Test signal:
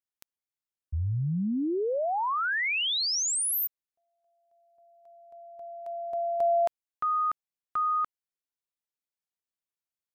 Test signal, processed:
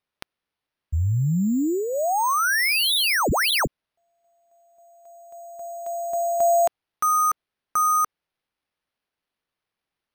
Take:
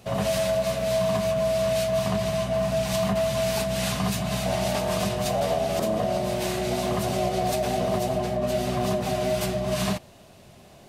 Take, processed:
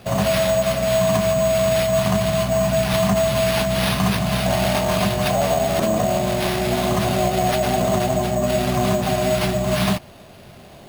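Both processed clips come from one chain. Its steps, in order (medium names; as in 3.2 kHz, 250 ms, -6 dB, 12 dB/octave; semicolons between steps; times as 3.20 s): dynamic bell 470 Hz, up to -6 dB, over -43 dBFS, Q 2.7; sample-and-hold 6×; trim +7 dB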